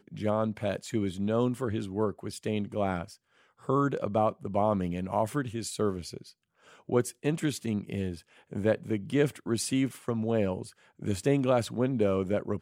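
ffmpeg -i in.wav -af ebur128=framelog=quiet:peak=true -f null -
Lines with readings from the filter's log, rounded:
Integrated loudness:
  I:         -30.2 LUFS
  Threshold: -40.6 LUFS
Loudness range:
  LRA:         3.0 LU
  Threshold: -50.9 LUFS
  LRA low:   -32.4 LUFS
  LRA high:  -29.3 LUFS
True peak:
  Peak:      -13.0 dBFS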